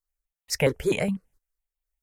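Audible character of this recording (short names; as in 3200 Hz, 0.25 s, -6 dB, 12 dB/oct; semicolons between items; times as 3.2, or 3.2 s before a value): tremolo triangle 2.2 Hz, depth 45%; notches that jump at a steady rate 12 Hz 700–1500 Hz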